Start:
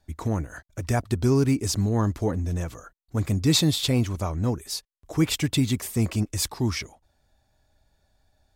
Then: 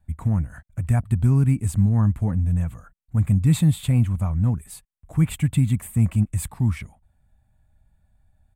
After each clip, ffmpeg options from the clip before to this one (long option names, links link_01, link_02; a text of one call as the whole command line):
ffmpeg -i in.wav -af "firequalizer=gain_entry='entry(190,0);entry(350,-20);entry(720,-11);entry(2400,-11);entry(5400,-30);entry(8100,-8);entry(13000,-12)':delay=0.05:min_phase=1,volume=6.5dB" out.wav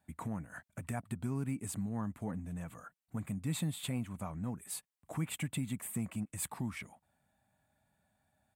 ffmpeg -i in.wav -af "acompressor=threshold=-29dB:ratio=2.5,highpass=250" out.wav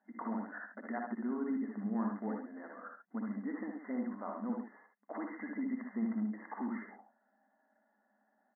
ffmpeg -i in.wav -filter_complex "[0:a]asplit=2[link_01][link_02];[link_02]aecho=0:1:75:0.562[link_03];[link_01][link_03]amix=inputs=2:normalize=0,afftfilt=real='re*between(b*sr/4096,200,2100)':imag='im*between(b*sr/4096,200,2100)':win_size=4096:overlap=0.75,asplit=2[link_04][link_05];[link_05]aecho=0:1:49|61:0.188|0.562[link_06];[link_04][link_06]amix=inputs=2:normalize=0,volume=1.5dB" out.wav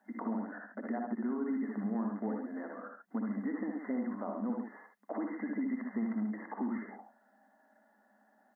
ffmpeg -i in.wav -filter_complex "[0:a]acrossover=split=220|700[link_01][link_02][link_03];[link_01]acompressor=threshold=-50dB:ratio=4[link_04];[link_02]acompressor=threshold=-43dB:ratio=4[link_05];[link_03]acompressor=threshold=-57dB:ratio=4[link_06];[link_04][link_05][link_06]amix=inputs=3:normalize=0,volume=7.5dB" out.wav